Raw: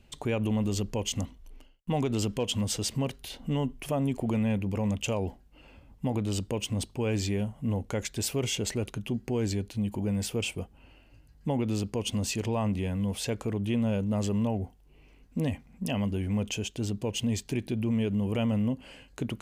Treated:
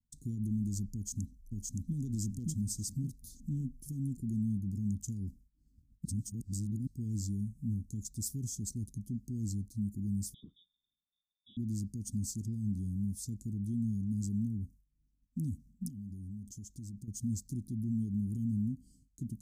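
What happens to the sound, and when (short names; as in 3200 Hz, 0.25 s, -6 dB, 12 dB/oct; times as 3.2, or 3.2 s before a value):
0.94–1.96 echo throw 0.57 s, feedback 40%, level -1 dB
6.05–6.87 reverse
10.34–11.57 inverted band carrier 3600 Hz
15.88–17.08 compressor 12:1, threshold -34 dBFS
whole clip: expander -46 dBFS; inverse Chebyshev band-stop 540–2800 Hz, stop band 50 dB; gain -4.5 dB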